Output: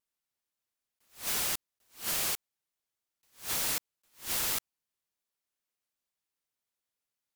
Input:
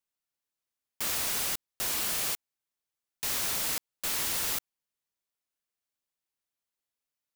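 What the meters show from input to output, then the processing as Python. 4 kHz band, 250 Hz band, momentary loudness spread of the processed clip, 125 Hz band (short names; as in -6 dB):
-3.0 dB, -3.0 dB, 9 LU, -2.5 dB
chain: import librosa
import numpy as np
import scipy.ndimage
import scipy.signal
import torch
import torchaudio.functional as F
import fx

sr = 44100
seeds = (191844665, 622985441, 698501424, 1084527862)

y = fx.vibrato(x, sr, rate_hz=5.6, depth_cents=82.0)
y = fx.attack_slew(y, sr, db_per_s=200.0)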